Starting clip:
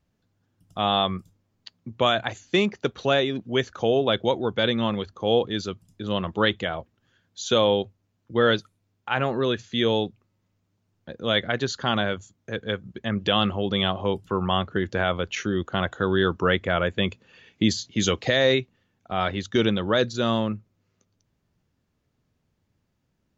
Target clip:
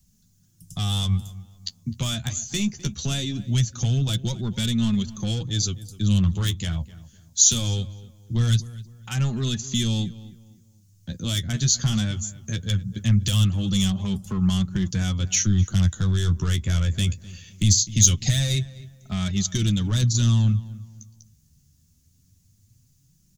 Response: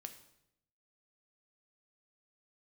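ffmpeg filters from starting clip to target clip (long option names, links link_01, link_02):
-filter_complex "[0:a]aeval=exprs='0.422*(cos(1*acos(clip(val(0)/0.422,-1,1)))-cos(1*PI/2))+0.0119*(cos(7*acos(clip(val(0)/0.422,-1,1)))-cos(7*PI/2))':channel_layout=same,acrossover=split=160[link_01][link_02];[link_02]acompressor=threshold=-32dB:ratio=2.5[link_03];[link_01][link_03]amix=inputs=2:normalize=0,flanger=delay=4.7:depth=8.9:regen=22:speed=0.21:shape=sinusoidal,asplit=2[link_04][link_05];[link_05]asoftclip=type=tanh:threshold=-29.5dB,volume=-10dB[link_06];[link_04][link_06]amix=inputs=2:normalize=0,apsyclip=26.5dB,firequalizer=gain_entry='entry(120,0);entry(440,-24);entry(6300,9)':delay=0.05:min_phase=1,asplit=2[link_07][link_08];[link_08]adelay=255,lowpass=frequency=2100:poles=1,volume=-17dB,asplit=2[link_09][link_10];[link_10]adelay=255,lowpass=frequency=2100:poles=1,volume=0.34,asplit=2[link_11][link_12];[link_12]adelay=255,lowpass=frequency=2100:poles=1,volume=0.34[link_13];[link_09][link_11][link_13]amix=inputs=3:normalize=0[link_14];[link_07][link_14]amix=inputs=2:normalize=0,volume=-9.5dB"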